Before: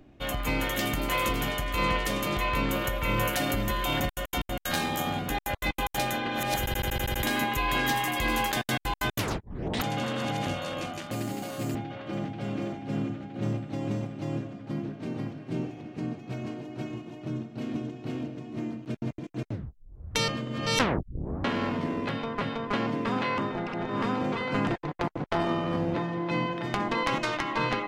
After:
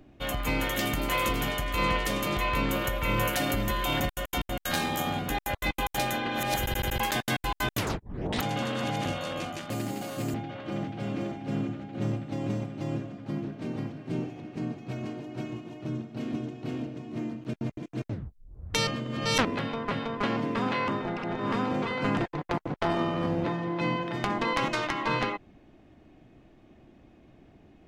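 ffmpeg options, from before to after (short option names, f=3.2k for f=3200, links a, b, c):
-filter_complex "[0:a]asplit=3[a][b][c];[a]atrim=end=7.002[d];[b]atrim=start=8.408:end=20.862[e];[c]atrim=start=21.948[f];[d][e]acrossfade=d=0.004:c1=hsin:c2=hsin[g];[g][f]acrossfade=d=0.004:c1=hsin:c2=hsin"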